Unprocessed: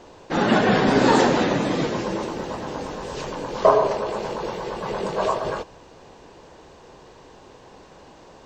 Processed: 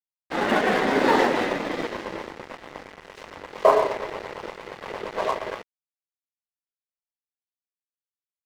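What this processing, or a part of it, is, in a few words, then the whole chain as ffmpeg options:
pocket radio on a weak battery: -af "highpass=280,lowpass=3600,aeval=exprs='sgn(val(0))*max(abs(val(0))-0.0299,0)':c=same,equalizer=f=2000:t=o:w=0.2:g=6"

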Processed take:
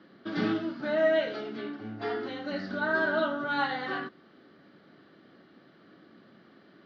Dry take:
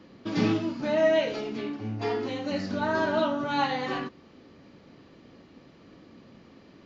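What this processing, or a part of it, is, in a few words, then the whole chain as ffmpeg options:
kitchen radio: -af "highpass=210,equalizer=f=260:t=q:w=4:g=-5,equalizer=f=490:t=q:w=4:g=-7,equalizer=f=950:t=q:w=4:g=-8,equalizer=f=1500:t=q:w=4:g=7,equalizer=f=2500:t=q:w=4:g=-10,lowpass=f=4100:w=0.5412,lowpass=f=4100:w=1.3066"

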